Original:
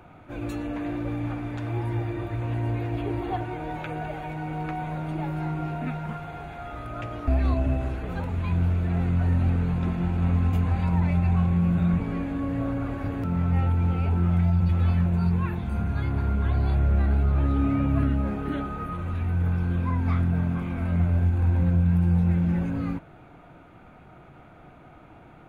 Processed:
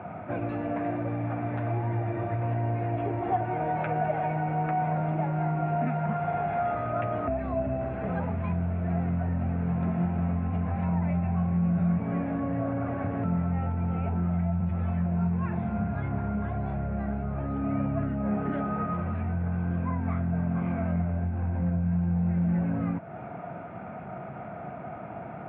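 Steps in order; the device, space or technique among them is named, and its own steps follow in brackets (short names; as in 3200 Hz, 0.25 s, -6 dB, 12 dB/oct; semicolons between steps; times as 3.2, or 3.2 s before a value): bass amplifier (compressor 3:1, threshold -37 dBFS, peak gain reduction 14.5 dB; speaker cabinet 88–2300 Hz, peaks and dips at 200 Hz +7 dB, 310 Hz -5 dB, 670 Hz +9 dB); gain +8 dB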